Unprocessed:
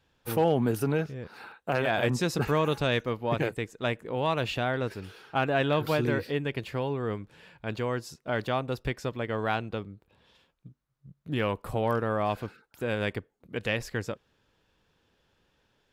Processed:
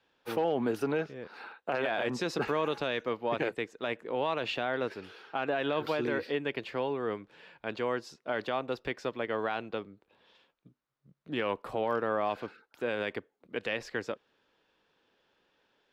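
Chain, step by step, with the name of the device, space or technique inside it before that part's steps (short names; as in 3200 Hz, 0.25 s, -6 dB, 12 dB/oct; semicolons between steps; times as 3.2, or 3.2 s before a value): DJ mixer with the lows and highs turned down (three-band isolator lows -17 dB, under 230 Hz, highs -15 dB, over 5600 Hz; limiter -20 dBFS, peak gain reduction 7.5 dB)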